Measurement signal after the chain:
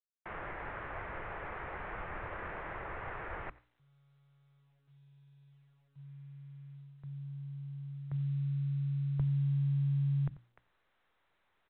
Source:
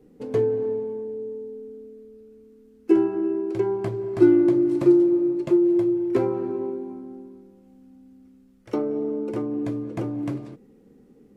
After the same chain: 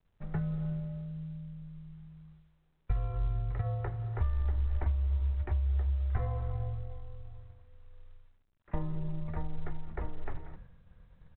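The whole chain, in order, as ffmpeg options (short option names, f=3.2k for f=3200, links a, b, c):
-filter_complex "[0:a]agate=range=-33dB:threshold=-42dB:ratio=3:detection=peak,lowshelf=f=180:g=-8.5,areverse,acompressor=mode=upward:threshold=-36dB:ratio=2.5,areverse,bandreject=f=530:w=12,asplit=2[a][b];[b]aecho=0:1:90:0.075[c];[a][c]amix=inputs=2:normalize=0,acompressor=threshold=-23dB:ratio=20,equalizer=f=125:t=o:w=1:g=5,equalizer=f=250:t=o:w=1:g=3,equalizer=f=500:t=o:w=1:g=-8,highpass=f=230:t=q:w=0.5412,highpass=f=230:t=q:w=1.307,lowpass=f=2.3k:t=q:w=0.5176,lowpass=f=2.3k:t=q:w=0.7071,lowpass=f=2.3k:t=q:w=1.932,afreqshift=-280,bandreject=f=60:t=h:w=6,bandreject=f=120:t=h:w=6,bandreject=f=180:t=h:w=6,bandreject=f=240:t=h:w=6,bandreject=f=300:t=h:w=6" -ar 8000 -c:a pcm_mulaw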